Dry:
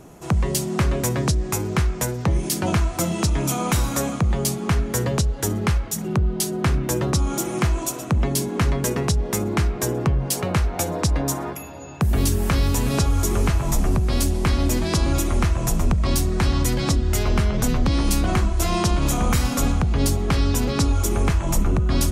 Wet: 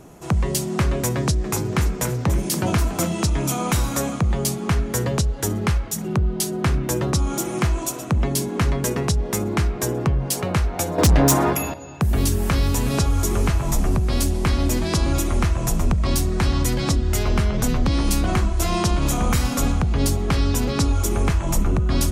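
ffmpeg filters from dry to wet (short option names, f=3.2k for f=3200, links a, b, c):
-filter_complex "[0:a]asettb=1/sr,asplit=3[a][b][c];[a]atrim=end=1.154[d];[b]atrim=start=1.15:end=3.07,asetpts=PTS-STARTPTS,afade=t=in:d=0.004:c=qsin,afade=t=out:st=1.916:d=0.004:c=qsin,asplit=6[e][f][g][h][i][j];[f]adelay=285,afreqshift=69,volume=-11dB[k];[g]adelay=570,afreqshift=138,volume=-17.6dB[l];[h]adelay=855,afreqshift=207,volume=-24.1dB[m];[i]adelay=1140,afreqshift=276,volume=-30.7dB[n];[j]adelay=1425,afreqshift=345,volume=-37.2dB[o];[e][k][l][m][n][o]amix=inputs=6:normalize=0,atrim=end_sample=84672[p];[c]atrim=start=3.066[q];[d][p]acrossfade=d=0.004:c1=hsin:c2=qsin[r];[r][q]acrossfade=d=0.004:c1=qsin:c2=hsin,asettb=1/sr,asplit=3[s][t][u];[s]atrim=end=10.984[v];[t]atrim=start=10.98:end=11.74,asetpts=PTS-STARTPTS,afade=t=in:d=0.004:c=qsin,afade=t=out:st=0.756:d=0.004:c=qsin,aeval=exprs='0.299*sin(PI/2*2.24*val(0)/0.299)':c=same[w];[u]atrim=start=11.736[x];[v][w]acrossfade=d=0.004:c1=hsin:c2=qsin[y];[y][x]acrossfade=d=0.004:c1=qsin:c2=hsin"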